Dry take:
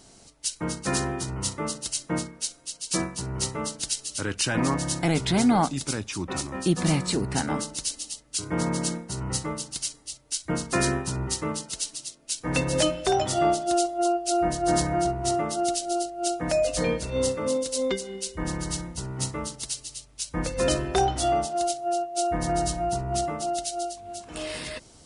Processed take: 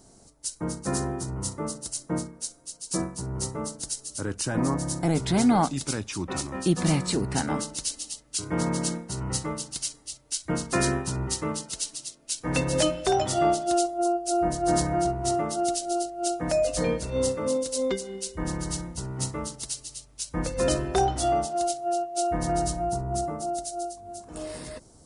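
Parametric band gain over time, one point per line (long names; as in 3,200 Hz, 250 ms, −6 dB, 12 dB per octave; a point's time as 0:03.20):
parametric band 2,800 Hz 1.6 octaves
0:04.99 −13.5 dB
0:05.45 −2 dB
0:13.77 −2 dB
0:14.05 −12.5 dB
0:14.76 −4.5 dB
0:22.55 −4.5 dB
0:23.12 −15 dB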